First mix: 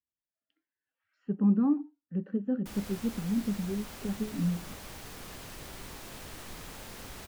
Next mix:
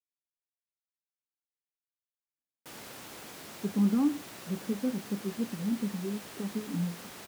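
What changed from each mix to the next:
speech: entry +2.35 s; master: add high-pass 170 Hz 12 dB/octave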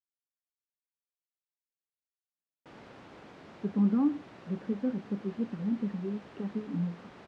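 background: add tape spacing loss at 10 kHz 33 dB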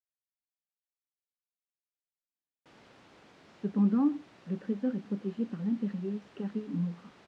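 background -8.0 dB; master: add treble shelf 2.6 kHz +9 dB

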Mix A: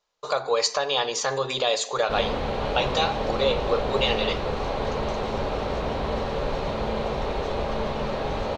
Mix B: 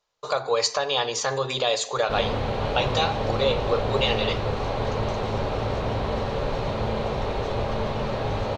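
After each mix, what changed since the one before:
master: add peaking EQ 110 Hz +14 dB 0.29 oct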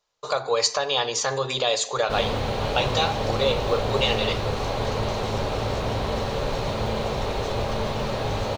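background: remove low-pass 3.6 kHz 6 dB/octave; master: add treble shelf 5.8 kHz +5 dB

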